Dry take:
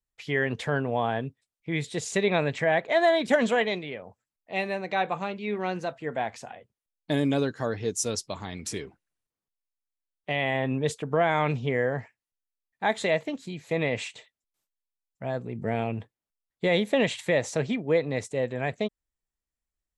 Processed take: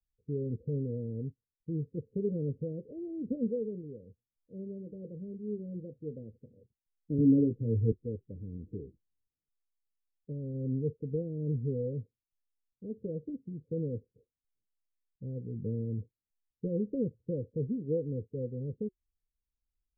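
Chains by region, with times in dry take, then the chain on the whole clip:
7.18–7.92 s: bass shelf 370 Hz +9 dB + doubling 18 ms -6 dB + three bands expanded up and down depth 70%
whole clip: steep low-pass 510 Hz 96 dB/octave; bass shelf 130 Hz +12 dB; band-stop 370 Hz, Q 12; trim -7.5 dB

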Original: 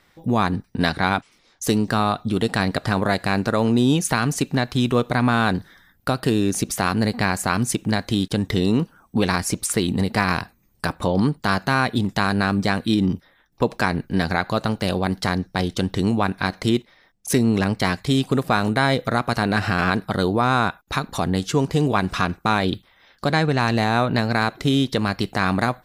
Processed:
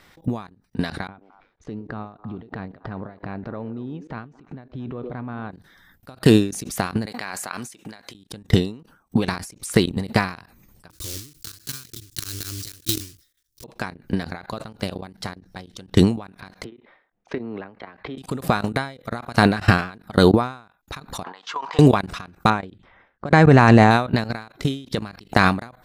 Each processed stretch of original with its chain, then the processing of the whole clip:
1.07–5.52 s: compression 1.5:1, threshold -46 dBFS + tape spacing loss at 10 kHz 45 dB + repeats whose band climbs or falls 113 ms, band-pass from 380 Hz, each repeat 1.4 oct, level -9 dB
7.06–8.15 s: high-pass 870 Hz 6 dB/octave + treble shelf 2.9 kHz -3 dB
10.90–13.64 s: block-companded coder 3-bit + FFT filter 120 Hz 0 dB, 200 Hz -22 dB, 320 Hz -3 dB, 830 Hz -28 dB, 1.2 kHz -13 dB, 2.3 kHz -6 dB, 5.3 kHz +9 dB, 8.2 kHz +9 dB, 14 kHz +10 dB + upward expansion, over -32 dBFS
16.64–18.18 s: low-pass 3.7 kHz 24 dB/octave + three-band isolator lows -14 dB, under 280 Hz, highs -14 dB, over 2.1 kHz
21.24–21.79 s: resonant high-pass 1 kHz, resonance Q 4.8 + distance through air 190 m
22.50–23.91 s: level-controlled noise filter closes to 1.7 kHz, open at -17 dBFS + low-pass 7.8 kHz 24 dB/octave + peaking EQ 4 kHz -12 dB 1.1 oct
whole clip: level held to a coarse grid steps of 22 dB; loudness maximiser +13.5 dB; endings held to a fixed fall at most 130 dB/s; trim -1 dB

